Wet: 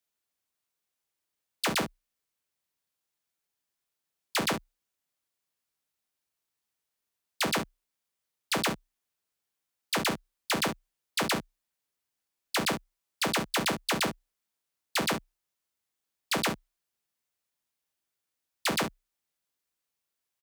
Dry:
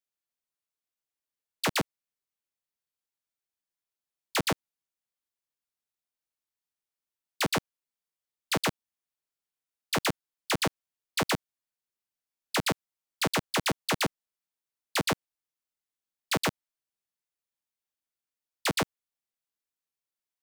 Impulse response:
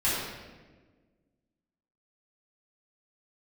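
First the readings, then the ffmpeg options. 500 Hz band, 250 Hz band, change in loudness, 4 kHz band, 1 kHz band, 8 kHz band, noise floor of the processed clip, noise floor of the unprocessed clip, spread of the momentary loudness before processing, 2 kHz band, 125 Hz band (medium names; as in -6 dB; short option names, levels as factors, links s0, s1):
-0.5 dB, 0.0 dB, 0.0 dB, +0.5 dB, 0.0 dB, +0.5 dB, under -85 dBFS, under -85 dBFS, 4 LU, +0.5 dB, -3.5 dB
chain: -af "aecho=1:1:33|49:0.237|0.141,alimiter=level_in=1.41:limit=0.0631:level=0:latency=1:release=21,volume=0.708,afreqshift=31,volume=2"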